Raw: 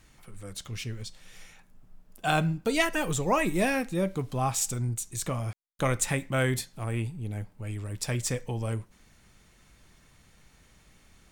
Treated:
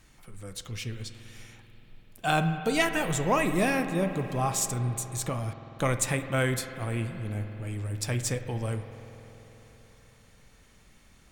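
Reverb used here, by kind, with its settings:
spring reverb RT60 4 s, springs 48 ms, chirp 70 ms, DRR 8.5 dB

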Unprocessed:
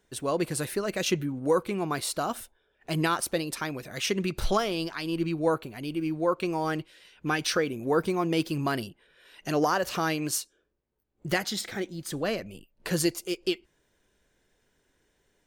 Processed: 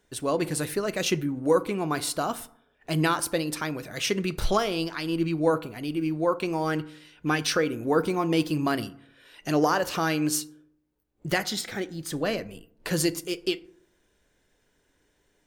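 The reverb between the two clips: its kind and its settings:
feedback delay network reverb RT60 0.66 s, low-frequency decay 1.1×, high-frequency decay 0.45×, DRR 13.5 dB
level +1.5 dB

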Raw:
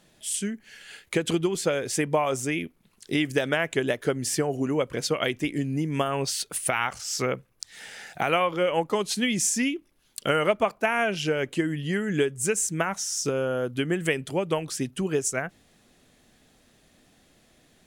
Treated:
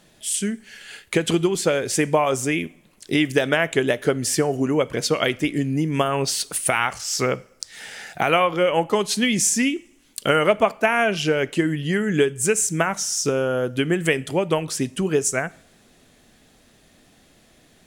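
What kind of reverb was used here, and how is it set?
coupled-rooms reverb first 0.53 s, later 2.8 s, from −26 dB, DRR 17.5 dB
level +5 dB

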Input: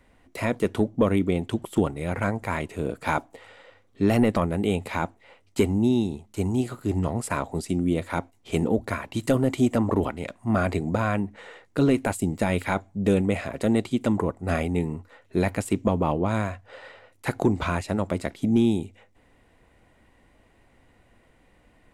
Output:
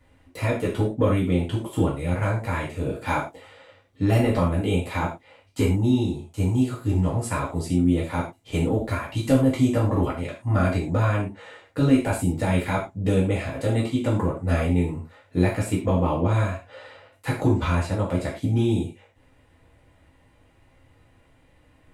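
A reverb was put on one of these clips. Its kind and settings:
reverb whose tail is shaped and stops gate 140 ms falling, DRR −5.5 dB
level −6 dB

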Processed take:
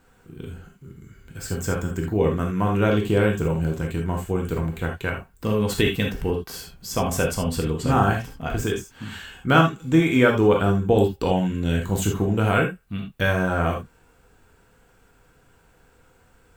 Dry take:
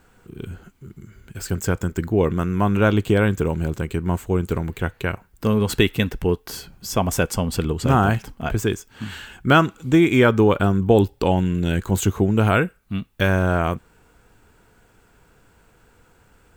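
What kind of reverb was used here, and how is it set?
reverb whose tail is shaped and stops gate 100 ms flat, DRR 0.5 dB
level −4.5 dB

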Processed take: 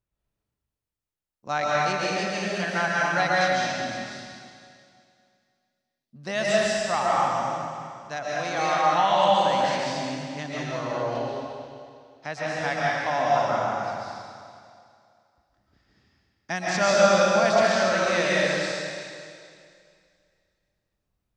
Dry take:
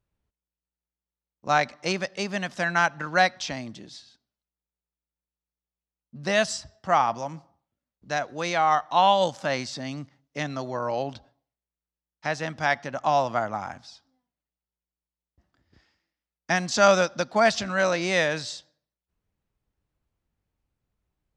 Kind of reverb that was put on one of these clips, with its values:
comb and all-pass reverb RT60 2.3 s, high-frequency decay 1×, pre-delay 95 ms, DRR −6.5 dB
level −6 dB

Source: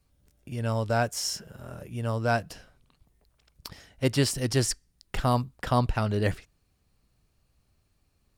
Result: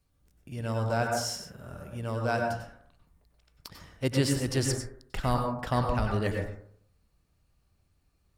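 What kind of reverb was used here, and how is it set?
dense smooth reverb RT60 0.61 s, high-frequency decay 0.25×, pre-delay 85 ms, DRR 1.5 dB
level −4 dB

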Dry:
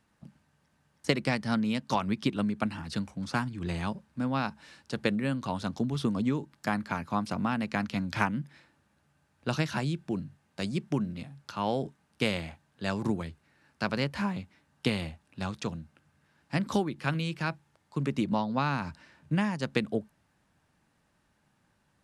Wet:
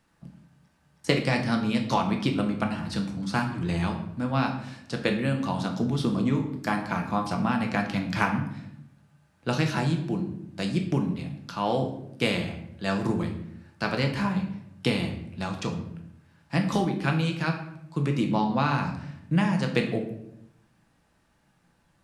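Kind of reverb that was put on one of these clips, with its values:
rectangular room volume 180 cubic metres, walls mixed, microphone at 0.74 metres
level +2 dB

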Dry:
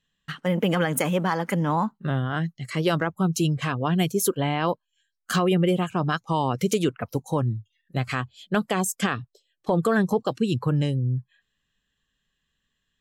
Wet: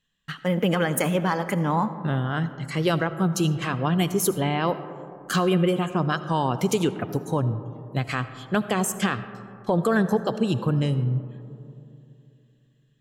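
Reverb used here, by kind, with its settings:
comb and all-pass reverb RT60 2.8 s, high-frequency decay 0.25×, pre-delay 35 ms, DRR 12 dB

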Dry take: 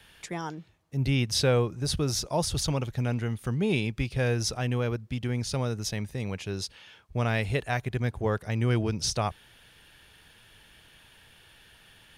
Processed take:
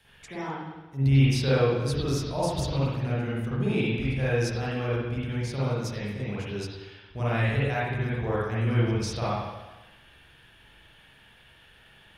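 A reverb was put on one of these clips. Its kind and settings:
spring reverb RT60 1.1 s, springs 44/59 ms, chirp 50 ms, DRR −9 dB
level −8 dB

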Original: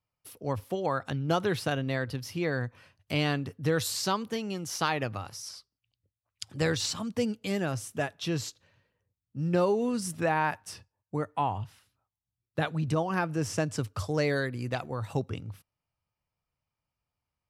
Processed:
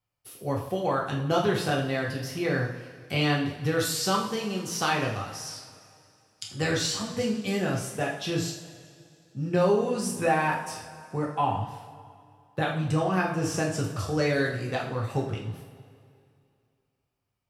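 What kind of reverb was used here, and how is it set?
coupled-rooms reverb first 0.54 s, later 2.5 s, from −16 dB, DRR −2.5 dB
level −1 dB

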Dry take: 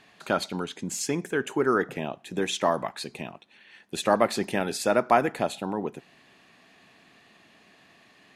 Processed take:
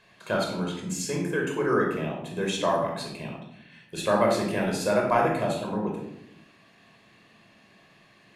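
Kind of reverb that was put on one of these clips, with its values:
rectangular room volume 2,000 cubic metres, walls furnished, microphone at 5.3 metres
level −5.5 dB

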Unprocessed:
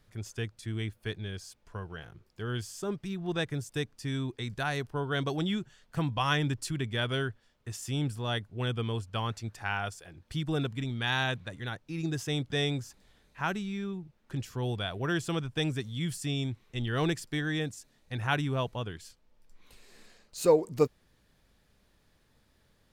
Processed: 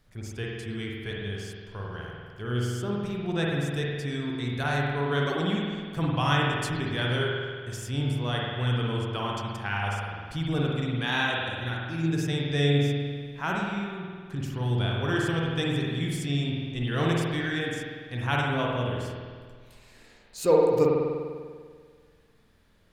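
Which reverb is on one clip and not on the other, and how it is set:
spring reverb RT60 1.8 s, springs 49 ms, chirp 70 ms, DRR −3 dB

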